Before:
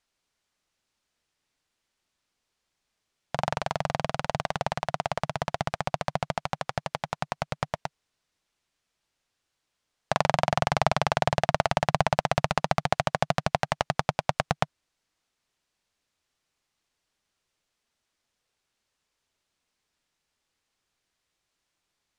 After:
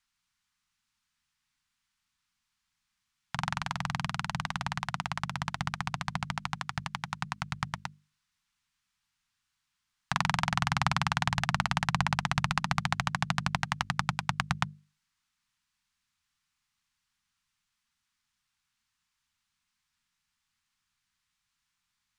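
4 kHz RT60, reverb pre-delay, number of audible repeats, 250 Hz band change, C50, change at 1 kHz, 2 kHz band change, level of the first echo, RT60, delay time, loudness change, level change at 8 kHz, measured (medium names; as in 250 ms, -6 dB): no reverb, no reverb, no echo, -2.0 dB, no reverb, -5.5 dB, 0.0 dB, no echo, no reverb, no echo, -3.5 dB, -1.0 dB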